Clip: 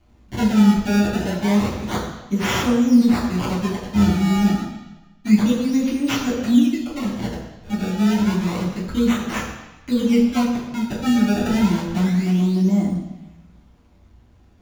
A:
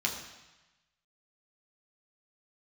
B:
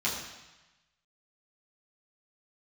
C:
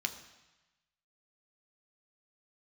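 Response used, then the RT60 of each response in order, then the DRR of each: B; 1.1, 1.1, 1.1 s; -1.0, -7.5, 6.0 dB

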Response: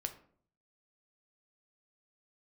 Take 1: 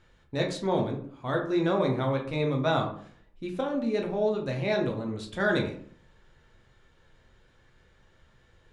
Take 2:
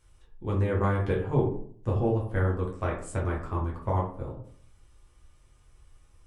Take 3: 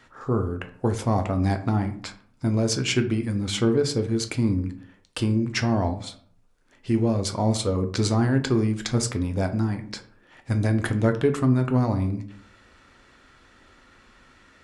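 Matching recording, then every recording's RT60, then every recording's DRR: 3; 0.55, 0.55, 0.55 s; 0.5, -4.0, 6.5 dB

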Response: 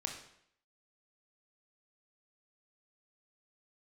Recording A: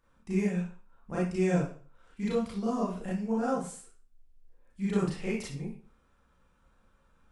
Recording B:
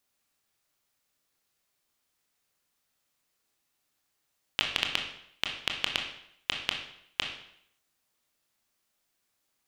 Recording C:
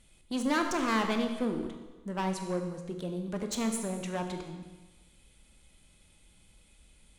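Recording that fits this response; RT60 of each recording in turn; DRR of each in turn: B; 0.45, 0.70, 1.2 s; -7.5, 2.0, 4.5 dB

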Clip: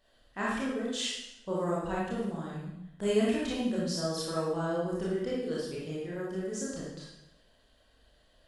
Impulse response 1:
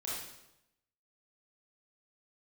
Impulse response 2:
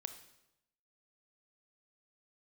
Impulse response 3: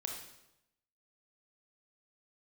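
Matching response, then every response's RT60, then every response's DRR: 1; 0.90, 0.90, 0.90 s; -7.0, 8.5, 1.0 dB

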